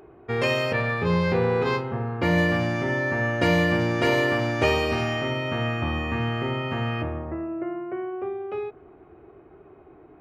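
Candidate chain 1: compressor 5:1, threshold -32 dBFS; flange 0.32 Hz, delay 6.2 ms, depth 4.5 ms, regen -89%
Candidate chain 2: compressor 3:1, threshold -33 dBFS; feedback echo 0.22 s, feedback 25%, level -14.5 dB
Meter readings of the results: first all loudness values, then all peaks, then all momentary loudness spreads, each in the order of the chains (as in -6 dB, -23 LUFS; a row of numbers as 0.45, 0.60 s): -39.0, -33.5 LUFS; -25.5, -19.0 dBFS; 17, 17 LU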